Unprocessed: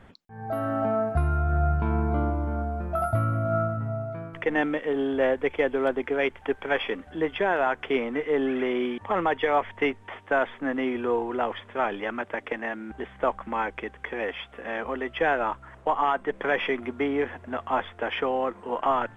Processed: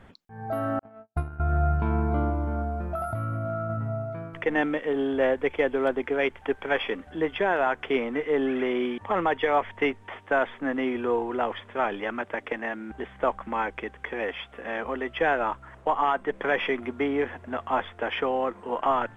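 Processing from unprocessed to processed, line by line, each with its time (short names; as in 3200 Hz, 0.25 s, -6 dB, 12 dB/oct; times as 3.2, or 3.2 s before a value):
0.79–1.4 gate -22 dBFS, range -56 dB
2.8–3.7 compressor, threshold -26 dBFS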